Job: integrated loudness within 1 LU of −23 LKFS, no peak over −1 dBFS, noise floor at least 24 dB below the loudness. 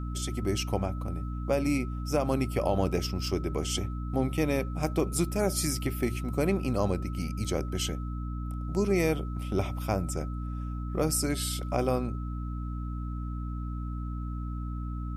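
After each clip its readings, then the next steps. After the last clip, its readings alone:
mains hum 60 Hz; hum harmonics up to 300 Hz; level of the hum −32 dBFS; interfering tone 1,300 Hz; level of the tone −46 dBFS; integrated loudness −31.0 LKFS; sample peak −13.5 dBFS; target loudness −23.0 LKFS
→ hum removal 60 Hz, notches 5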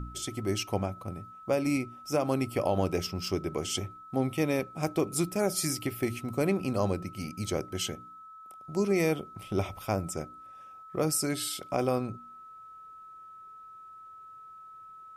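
mains hum none found; interfering tone 1,300 Hz; level of the tone −46 dBFS
→ notch filter 1,300 Hz, Q 30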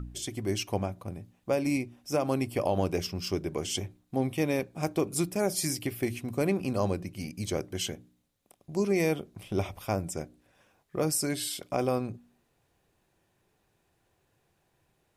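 interfering tone none found; integrated loudness −31.0 LKFS; sample peak −14.0 dBFS; target loudness −23.0 LKFS
→ level +8 dB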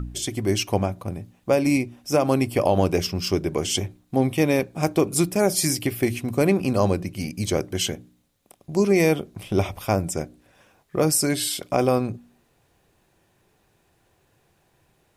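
integrated loudness −23.0 LKFS; sample peak −6.0 dBFS; background noise floor −65 dBFS

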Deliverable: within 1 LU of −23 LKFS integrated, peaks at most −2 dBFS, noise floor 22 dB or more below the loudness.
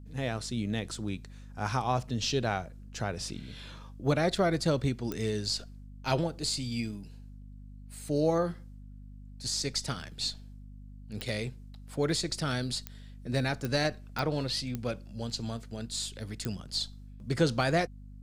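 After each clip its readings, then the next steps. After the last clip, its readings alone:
number of clicks 7; mains hum 50 Hz; hum harmonics up to 250 Hz; level of the hum −45 dBFS; integrated loudness −32.0 LKFS; sample peak −13.5 dBFS; target loudness −23.0 LKFS
→ click removal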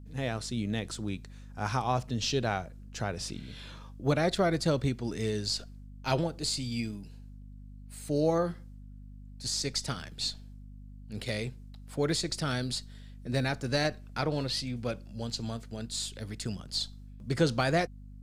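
number of clicks 0; mains hum 50 Hz; hum harmonics up to 250 Hz; level of the hum −45 dBFS
→ mains-hum notches 50/100/150/200/250 Hz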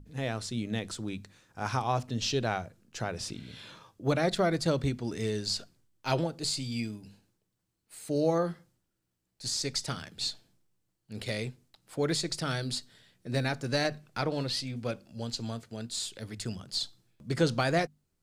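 mains hum none found; integrated loudness −32.5 LKFS; sample peak −13.5 dBFS; target loudness −23.0 LKFS
→ level +9.5 dB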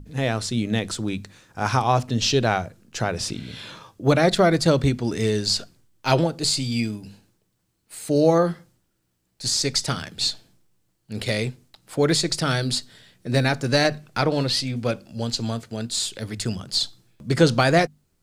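integrated loudness −23.0 LKFS; sample peak −4.0 dBFS; background noise floor −71 dBFS

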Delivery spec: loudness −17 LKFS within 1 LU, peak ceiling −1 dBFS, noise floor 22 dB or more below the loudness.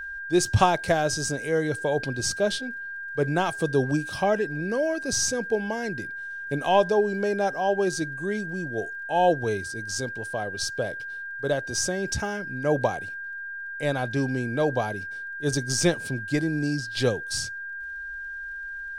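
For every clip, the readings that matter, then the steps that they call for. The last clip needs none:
crackle rate 32 per second; interfering tone 1,600 Hz; level of the tone −33 dBFS; integrated loudness −26.5 LKFS; sample peak −6.5 dBFS; target loudness −17.0 LKFS
→ click removal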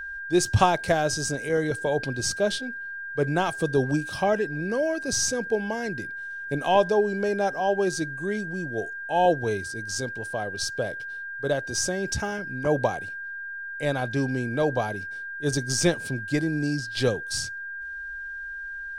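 crackle rate 0.16 per second; interfering tone 1,600 Hz; level of the tone −33 dBFS
→ notch filter 1,600 Hz, Q 30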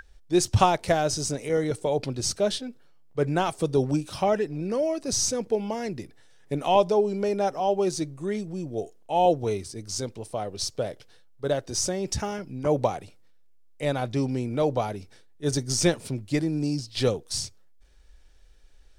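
interfering tone none found; integrated loudness −26.5 LKFS; sample peak −6.0 dBFS; target loudness −17.0 LKFS
→ level +9.5 dB
brickwall limiter −1 dBFS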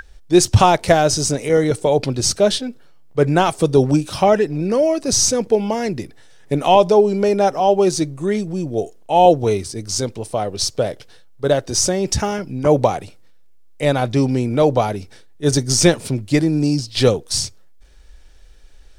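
integrated loudness −17.5 LKFS; sample peak −1.0 dBFS; background noise floor −43 dBFS

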